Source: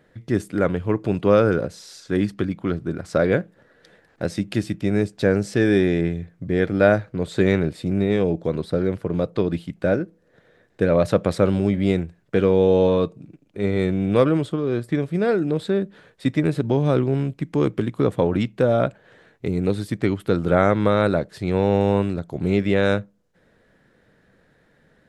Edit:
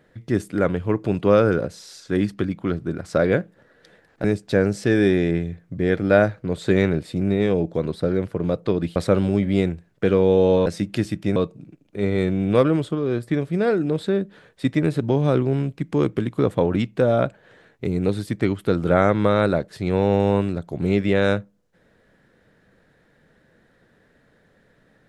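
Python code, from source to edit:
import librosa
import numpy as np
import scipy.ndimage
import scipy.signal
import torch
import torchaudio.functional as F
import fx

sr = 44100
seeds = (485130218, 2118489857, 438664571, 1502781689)

y = fx.edit(x, sr, fx.move(start_s=4.24, length_s=0.7, to_s=12.97),
    fx.cut(start_s=9.66, length_s=1.61), tone=tone)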